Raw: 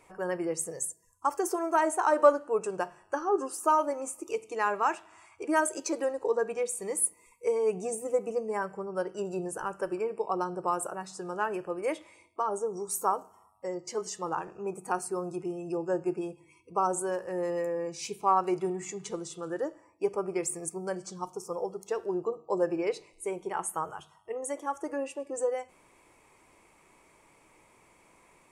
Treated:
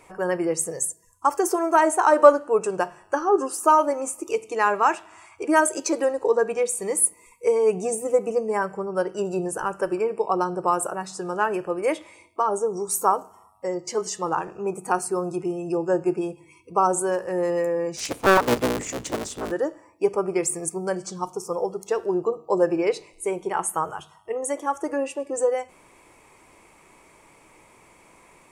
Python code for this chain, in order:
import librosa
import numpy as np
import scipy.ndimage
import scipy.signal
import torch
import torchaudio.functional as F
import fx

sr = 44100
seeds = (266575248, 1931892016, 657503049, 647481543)

y = fx.cycle_switch(x, sr, every=3, mode='inverted', at=(17.96, 19.5), fade=0.02)
y = y * 10.0 ** (7.5 / 20.0)